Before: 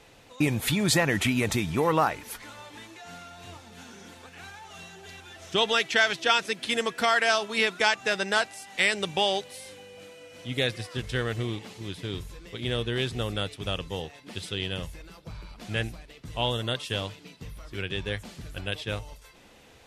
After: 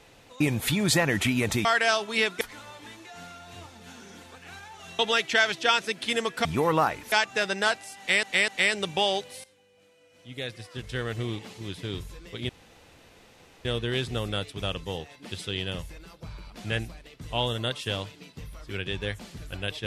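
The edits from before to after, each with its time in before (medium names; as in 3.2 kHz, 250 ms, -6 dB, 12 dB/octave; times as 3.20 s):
1.65–2.32 s: swap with 7.06–7.82 s
4.90–5.60 s: delete
8.68–8.93 s: loop, 3 plays
9.64–11.54 s: fade in quadratic, from -16 dB
12.69 s: insert room tone 1.16 s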